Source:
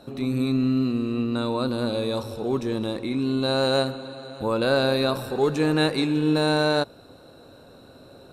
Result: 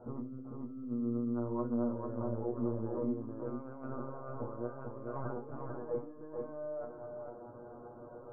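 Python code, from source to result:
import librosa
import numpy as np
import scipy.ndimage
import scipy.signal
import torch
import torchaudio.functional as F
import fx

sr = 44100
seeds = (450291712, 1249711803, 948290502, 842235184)

y = scipy.signal.sosfilt(scipy.signal.butter(8, 1300.0, 'lowpass', fs=sr, output='sos'), x)
y = fx.lpc_vocoder(y, sr, seeds[0], excitation='pitch_kept', order=16)
y = fx.over_compress(y, sr, threshold_db=-32.0, ratio=-1.0)
y = fx.low_shelf(y, sr, hz=91.0, db=-12.0)
y = fx.comb_fb(y, sr, f0_hz=120.0, decay_s=0.21, harmonics='all', damping=0.0, mix_pct=100)
y = y + 10.0 ** (-4.0 / 20.0) * np.pad(y, (int(446 * sr / 1000.0), 0))[:len(y)]
y = y * librosa.db_to_amplitude(1.0)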